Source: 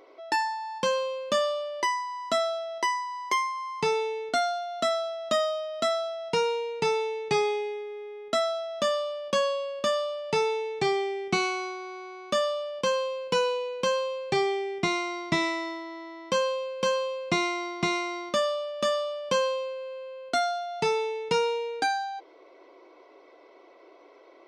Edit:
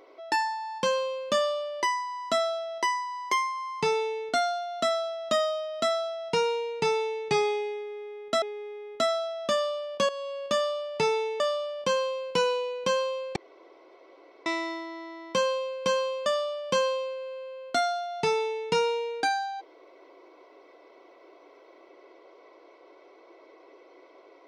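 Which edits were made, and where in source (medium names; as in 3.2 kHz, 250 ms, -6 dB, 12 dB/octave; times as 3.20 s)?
7.75–8.42 s: loop, 2 plays
9.42–9.76 s: fade in, from -13 dB
10.73–12.37 s: delete
14.33–15.43 s: room tone
17.23–18.85 s: delete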